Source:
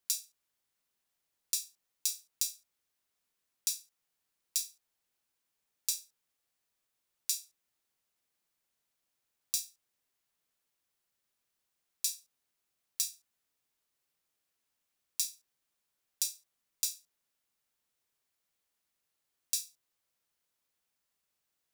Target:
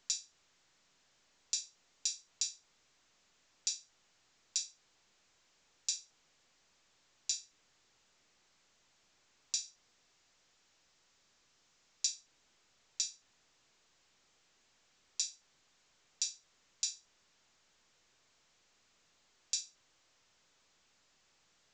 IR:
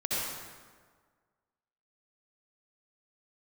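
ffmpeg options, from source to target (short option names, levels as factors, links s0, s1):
-filter_complex "[0:a]asettb=1/sr,asplit=3[s0][s1][s2];[s0]atrim=end=9.644[s3];[s1]atrim=start=9.64:end=12.07,asetpts=PTS-STARTPTS,afade=t=in:d=0.004:c=qsin,afade=t=out:st=2.426:d=0.004:c=qsin,equalizer=f=5400:t=o:w=0.75:g=3[s4];[s2]atrim=start=12.066[s5];[s3][s4]acrossfade=d=0.004:c1=hsin:c2=qsin[s6];[s6][s5]acrossfade=d=0.004:c1=qsin:c2=hsin" -ar 16000 -c:a pcm_alaw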